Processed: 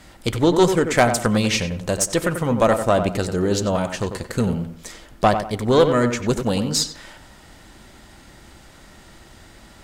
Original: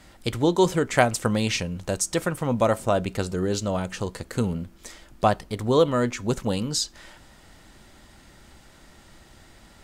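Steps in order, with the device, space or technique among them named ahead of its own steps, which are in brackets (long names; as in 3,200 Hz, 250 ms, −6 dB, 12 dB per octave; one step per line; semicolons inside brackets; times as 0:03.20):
rockabilly slapback (tube saturation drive 12 dB, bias 0.45; tape delay 93 ms, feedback 34%, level −6.5 dB, low-pass 2,000 Hz)
level +6.5 dB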